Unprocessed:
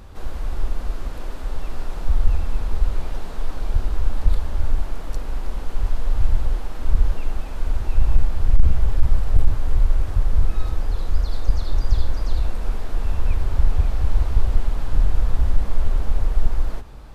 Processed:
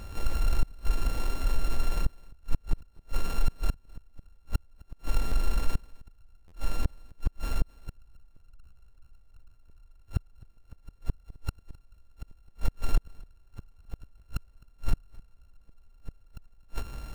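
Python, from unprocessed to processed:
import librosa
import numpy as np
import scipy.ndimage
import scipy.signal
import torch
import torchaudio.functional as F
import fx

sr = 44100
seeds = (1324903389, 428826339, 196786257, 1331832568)

p1 = np.r_[np.sort(x[:len(x) // 32 * 32].reshape(-1, 32), axis=1).ravel(), x[len(x) // 32 * 32:]]
p2 = fx.notch(p1, sr, hz=1300.0, q=15.0)
p3 = np.clip(10.0 ** (20.5 / 20.0) * p2, -1.0, 1.0) / 10.0 ** (20.5 / 20.0)
p4 = p2 + (p3 * 10.0 ** (-8.0 / 20.0))
p5 = fx.gate_flip(p4, sr, shuts_db=-10.0, range_db=-38)
p6 = p5 + fx.echo_single(p5, sr, ms=260, db=-23.5, dry=0)
p7 = fx.buffer_glitch(p6, sr, at_s=(5.27, 6.47), block=512, repeats=3)
y = p7 * 10.0 ** (-2.5 / 20.0)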